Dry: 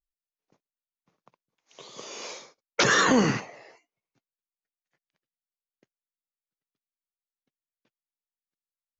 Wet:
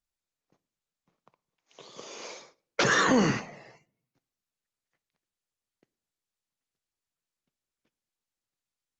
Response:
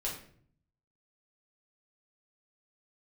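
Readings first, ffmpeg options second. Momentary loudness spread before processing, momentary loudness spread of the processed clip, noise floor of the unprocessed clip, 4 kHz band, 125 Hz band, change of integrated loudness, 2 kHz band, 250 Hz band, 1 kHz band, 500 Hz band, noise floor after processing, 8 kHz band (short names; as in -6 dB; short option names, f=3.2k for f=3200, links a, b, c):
20 LU, 21 LU, under -85 dBFS, -4.0 dB, -1.5 dB, -2.5 dB, -2.5 dB, -1.5 dB, -2.0 dB, -1.5 dB, under -85 dBFS, n/a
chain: -filter_complex "[0:a]asplit=2[a][b];[1:a]atrim=start_sample=2205,adelay=6[c];[b][c]afir=irnorm=-1:irlink=0,volume=-20.5dB[d];[a][d]amix=inputs=2:normalize=0,volume=-1.5dB" -ar 48000 -c:a libopus -b:a 24k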